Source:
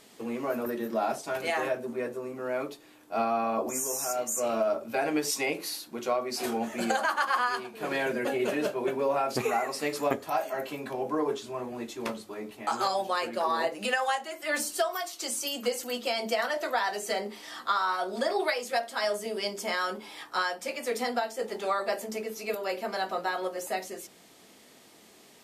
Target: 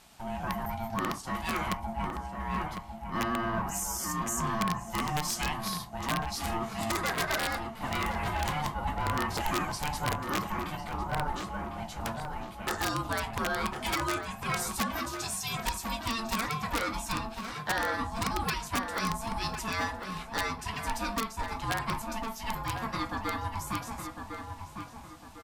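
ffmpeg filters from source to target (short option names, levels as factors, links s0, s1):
-filter_complex "[0:a]asplit=2[s0][s1];[s1]volume=26.6,asoftclip=hard,volume=0.0376,volume=0.596[s2];[s0][s2]amix=inputs=2:normalize=0,aeval=exprs='val(0)*sin(2*PI*450*n/s)':c=same,aeval=exprs='(mod(7.94*val(0)+1,2)-1)/7.94':c=same,asplit=2[s3][s4];[s4]adelay=1053,lowpass=f=2000:p=1,volume=0.501,asplit=2[s5][s6];[s6]adelay=1053,lowpass=f=2000:p=1,volume=0.4,asplit=2[s7][s8];[s8]adelay=1053,lowpass=f=2000:p=1,volume=0.4,asplit=2[s9][s10];[s10]adelay=1053,lowpass=f=2000:p=1,volume=0.4,asplit=2[s11][s12];[s12]adelay=1053,lowpass=f=2000:p=1,volume=0.4[s13];[s3][s5][s7][s9][s11][s13]amix=inputs=6:normalize=0,volume=0.708"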